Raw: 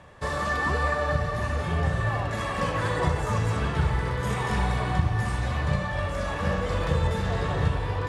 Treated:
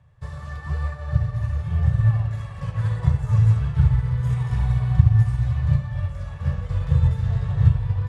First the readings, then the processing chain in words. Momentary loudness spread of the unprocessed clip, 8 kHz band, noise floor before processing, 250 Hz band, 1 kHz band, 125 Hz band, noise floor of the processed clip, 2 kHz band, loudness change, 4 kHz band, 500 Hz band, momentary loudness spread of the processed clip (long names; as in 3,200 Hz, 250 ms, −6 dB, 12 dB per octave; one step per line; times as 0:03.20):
3 LU, below −10 dB, −31 dBFS, +0.5 dB, −11.5 dB, +8.0 dB, −36 dBFS, −11.5 dB, +5.0 dB, below −10 dB, −13.0 dB, 11 LU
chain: low shelf with overshoot 180 Hz +12.5 dB, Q 3
expander for the loud parts 1.5 to 1, over −24 dBFS
level −6.5 dB